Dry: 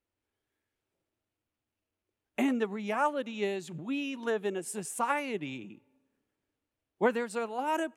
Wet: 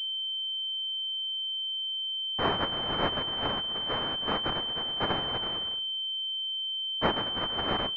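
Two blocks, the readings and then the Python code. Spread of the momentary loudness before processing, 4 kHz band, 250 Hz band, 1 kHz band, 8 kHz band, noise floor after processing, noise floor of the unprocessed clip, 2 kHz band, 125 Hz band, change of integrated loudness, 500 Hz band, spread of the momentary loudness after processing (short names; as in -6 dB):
8 LU, +23.5 dB, -4.0 dB, +1.0 dB, under -20 dB, -33 dBFS, under -85 dBFS, +0.5 dB, +7.5 dB, +3.5 dB, -2.5 dB, 2 LU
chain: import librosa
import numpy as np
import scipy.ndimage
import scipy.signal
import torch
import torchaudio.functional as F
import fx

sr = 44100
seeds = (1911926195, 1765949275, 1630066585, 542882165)

y = fx.hum_notches(x, sr, base_hz=60, count=10)
y = fx.noise_vocoder(y, sr, seeds[0], bands=1)
y = fx.pwm(y, sr, carrier_hz=3100.0)
y = y * librosa.db_to_amplitude(3.0)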